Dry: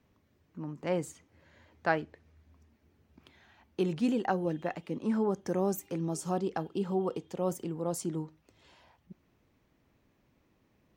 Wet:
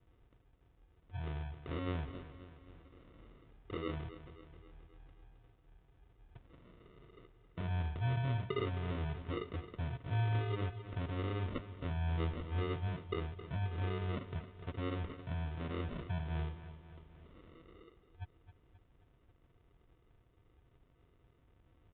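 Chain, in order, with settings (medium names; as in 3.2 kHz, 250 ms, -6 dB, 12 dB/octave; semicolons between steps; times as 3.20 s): in parallel at -2 dB: compression, threshold -44 dBFS, peak gain reduction 20.5 dB; on the sum: peak limiter -23 dBFS, peak gain reduction 11 dB; static phaser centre 1.6 kHz, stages 6; sample-and-hold 27×; on a send: feedback delay 133 ms, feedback 56%, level -13 dB; on the sum: resampled via 16 kHz; speed mistake 15 ips tape played at 7.5 ips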